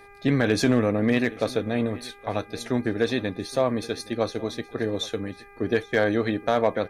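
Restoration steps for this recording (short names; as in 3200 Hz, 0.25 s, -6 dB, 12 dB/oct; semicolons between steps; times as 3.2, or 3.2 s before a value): clip repair -11 dBFS; de-hum 402.5 Hz, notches 6; expander -38 dBFS, range -21 dB; inverse comb 0.82 s -20.5 dB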